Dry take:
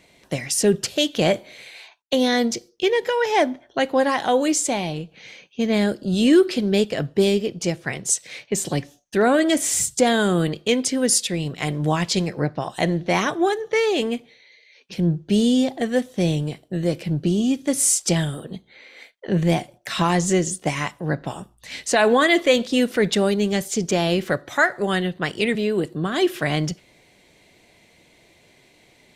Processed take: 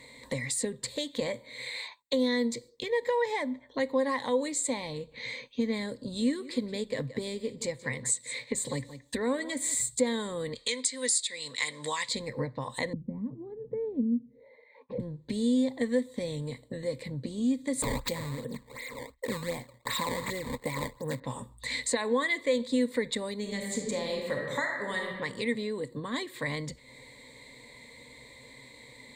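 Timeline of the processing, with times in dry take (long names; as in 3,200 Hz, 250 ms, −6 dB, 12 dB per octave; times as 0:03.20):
0:06.11–0:09.75: single-tap delay 174 ms −18.5 dB
0:10.55–0:12.09: meter weighting curve ITU-R 468
0:12.93–0:15.00: envelope-controlled low-pass 200–1,100 Hz down, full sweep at −27 dBFS
0:17.82–0:21.20: sample-and-hold swept by an LFO 19×, swing 160% 2.7 Hz
0:23.40–0:25.21: thrown reverb, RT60 1.1 s, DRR 0.5 dB
whole clip: downward compressor 3 to 1, threshold −36 dBFS; EQ curve with evenly spaced ripples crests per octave 1, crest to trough 16 dB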